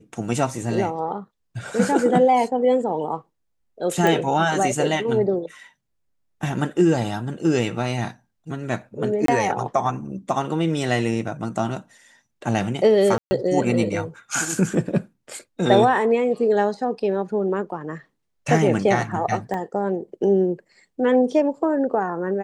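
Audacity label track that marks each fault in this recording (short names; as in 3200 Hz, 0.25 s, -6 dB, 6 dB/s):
4.070000	4.070000	pop
9.260000	9.280000	gap 23 ms
13.180000	13.310000	gap 0.13 s
19.540000	19.540000	gap 2.2 ms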